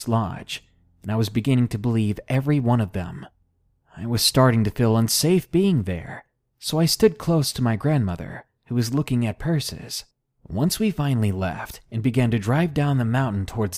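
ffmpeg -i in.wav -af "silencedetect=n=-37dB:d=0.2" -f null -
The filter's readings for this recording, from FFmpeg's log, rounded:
silence_start: 0.58
silence_end: 1.04 | silence_duration: 0.46
silence_start: 3.27
silence_end: 3.95 | silence_duration: 0.68
silence_start: 6.20
silence_end: 6.62 | silence_duration: 0.42
silence_start: 8.41
silence_end: 8.71 | silence_duration: 0.29
silence_start: 10.01
silence_end: 10.46 | silence_duration: 0.44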